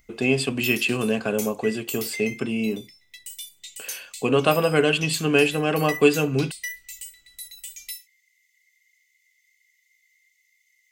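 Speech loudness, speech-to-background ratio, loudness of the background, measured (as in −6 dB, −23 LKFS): −22.5 LKFS, 13.5 dB, −36.0 LKFS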